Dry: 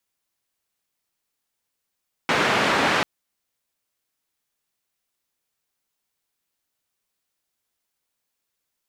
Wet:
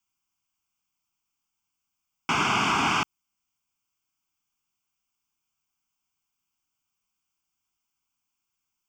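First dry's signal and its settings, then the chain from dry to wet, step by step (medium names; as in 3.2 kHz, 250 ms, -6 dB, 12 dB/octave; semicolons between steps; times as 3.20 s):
noise band 160–1900 Hz, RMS -20.5 dBFS 0.74 s
static phaser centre 2.7 kHz, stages 8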